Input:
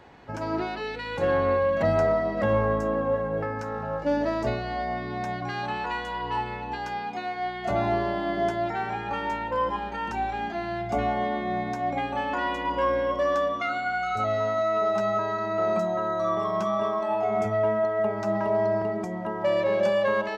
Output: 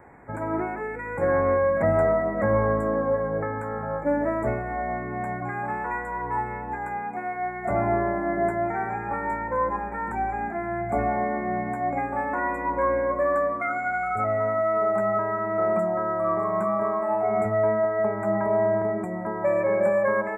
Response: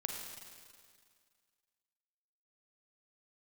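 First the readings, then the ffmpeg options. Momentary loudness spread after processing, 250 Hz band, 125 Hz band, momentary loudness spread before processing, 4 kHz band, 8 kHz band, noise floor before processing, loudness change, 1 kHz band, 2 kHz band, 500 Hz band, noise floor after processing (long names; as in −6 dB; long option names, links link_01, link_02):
8 LU, +1.5 dB, +1.0 dB, 8 LU, below −40 dB, can't be measured, −34 dBFS, +1.5 dB, +1.0 dB, +1.0 dB, +1.5 dB, −33 dBFS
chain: -filter_complex "[0:a]asuperstop=centerf=4200:order=20:qfactor=0.85,asplit=2[link_01][link_02];[1:a]atrim=start_sample=2205[link_03];[link_02][link_03]afir=irnorm=-1:irlink=0,volume=-15dB[link_04];[link_01][link_04]amix=inputs=2:normalize=0"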